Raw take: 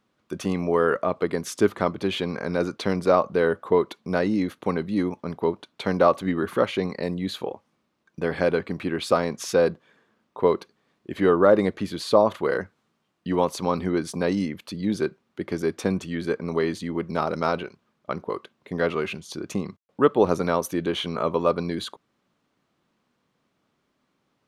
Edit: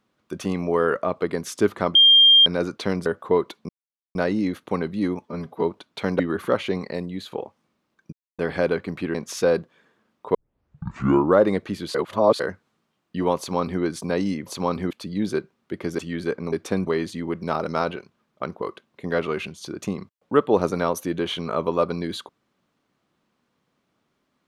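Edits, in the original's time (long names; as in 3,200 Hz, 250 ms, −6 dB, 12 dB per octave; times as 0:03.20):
0:01.95–0:02.46: beep over 3,200 Hz −9.5 dBFS
0:03.06–0:03.47: remove
0:04.10: splice in silence 0.46 s
0:05.20–0:05.45: time-stretch 1.5×
0:06.02–0:06.28: remove
0:06.92–0:07.40: fade out, to −6.5 dB
0:08.21: splice in silence 0.26 s
0:08.97–0:09.26: remove
0:10.46: tape start 1.04 s
0:12.06–0:12.51: reverse
0:13.49–0:13.93: duplicate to 0:14.58
0:15.66–0:16.00: move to 0:16.54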